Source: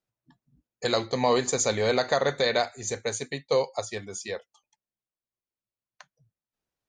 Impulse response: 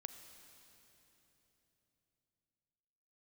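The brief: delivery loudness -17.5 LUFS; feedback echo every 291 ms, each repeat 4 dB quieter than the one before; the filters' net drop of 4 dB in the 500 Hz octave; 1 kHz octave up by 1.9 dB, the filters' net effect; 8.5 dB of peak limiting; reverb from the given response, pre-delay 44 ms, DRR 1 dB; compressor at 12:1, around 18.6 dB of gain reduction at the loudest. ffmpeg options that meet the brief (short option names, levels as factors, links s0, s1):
-filter_complex "[0:a]equalizer=f=500:t=o:g=-6,equalizer=f=1000:t=o:g=5,acompressor=threshold=0.0126:ratio=12,alimiter=level_in=2.82:limit=0.0631:level=0:latency=1,volume=0.355,aecho=1:1:291|582|873|1164|1455|1746|2037|2328|2619:0.631|0.398|0.25|0.158|0.0994|0.0626|0.0394|0.0249|0.0157,asplit=2[s0][s1];[1:a]atrim=start_sample=2205,adelay=44[s2];[s1][s2]afir=irnorm=-1:irlink=0,volume=1.41[s3];[s0][s3]amix=inputs=2:normalize=0,volume=15.8"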